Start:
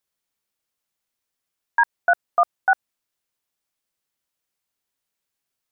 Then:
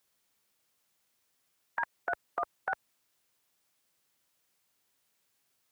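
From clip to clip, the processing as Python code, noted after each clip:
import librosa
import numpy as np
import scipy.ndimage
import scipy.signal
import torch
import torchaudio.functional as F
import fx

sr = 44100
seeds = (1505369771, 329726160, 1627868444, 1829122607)

y = scipy.signal.sosfilt(scipy.signal.butter(2, 64.0, 'highpass', fs=sr, output='sos'), x)
y = fx.spectral_comp(y, sr, ratio=2.0)
y = F.gain(torch.from_numpy(y), -8.5).numpy()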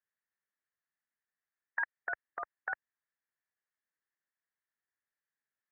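y = fx.level_steps(x, sr, step_db=18)
y = fx.ladder_lowpass(y, sr, hz=1900.0, resonance_pct=75)
y = F.gain(torch.from_numpy(y), 6.0).numpy()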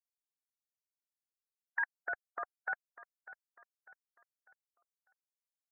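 y = fx.bin_expand(x, sr, power=2.0)
y = fx.echo_feedback(y, sr, ms=598, feedback_pct=42, wet_db=-17.0)
y = F.gain(torch.from_numpy(y), 1.5).numpy()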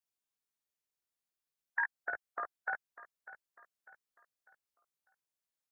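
y = fx.doubler(x, sr, ms=18.0, db=-5.0)
y = F.gain(torch.from_numpy(y), 1.0).numpy()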